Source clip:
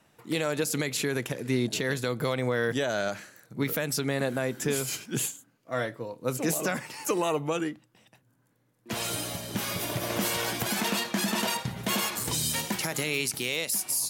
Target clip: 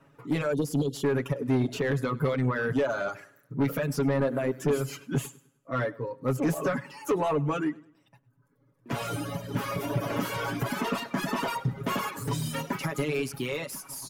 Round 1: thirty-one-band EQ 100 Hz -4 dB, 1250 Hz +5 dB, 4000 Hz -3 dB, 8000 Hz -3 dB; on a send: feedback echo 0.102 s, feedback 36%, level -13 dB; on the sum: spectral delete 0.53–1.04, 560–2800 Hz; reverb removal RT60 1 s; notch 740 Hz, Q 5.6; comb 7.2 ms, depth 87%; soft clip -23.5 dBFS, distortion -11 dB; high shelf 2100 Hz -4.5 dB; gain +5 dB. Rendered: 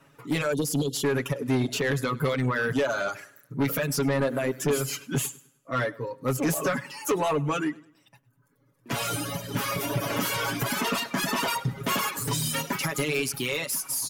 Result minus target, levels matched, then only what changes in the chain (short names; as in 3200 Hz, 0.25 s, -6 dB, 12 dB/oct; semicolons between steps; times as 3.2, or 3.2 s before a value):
4000 Hz band +6.0 dB
change: high shelf 2100 Hz -15.5 dB